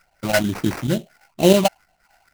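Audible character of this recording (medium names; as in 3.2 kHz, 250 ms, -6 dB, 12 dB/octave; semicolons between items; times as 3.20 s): phasing stages 12, 2.2 Hz, lowest notch 360–1300 Hz; chopped level 9.1 Hz, depth 60%, duty 90%; aliases and images of a low sample rate 3.5 kHz, jitter 20%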